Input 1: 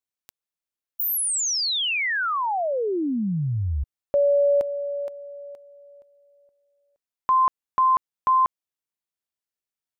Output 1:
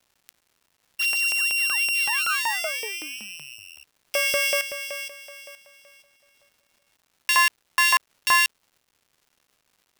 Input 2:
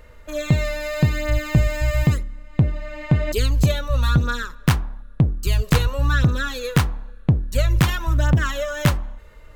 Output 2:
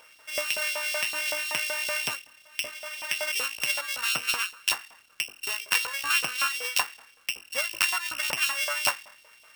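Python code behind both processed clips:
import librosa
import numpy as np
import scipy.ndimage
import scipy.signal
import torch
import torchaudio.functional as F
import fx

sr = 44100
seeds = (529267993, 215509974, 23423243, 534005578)

y = np.r_[np.sort(x[:len(x) // 16 * 16].reshape(-1, 16), axis=1).ravel(), x[len(x) // 16 * 16:]]
y = fx.filter_lfo_highpass(y, sr, shape='saw_up', hz=5.3, low_hz=750.0, high_hz=3900.0, q=1.3)
y = fx.dmg_crackle(y, sr, seeds[0], per_s=330.0, level_db=-51.0)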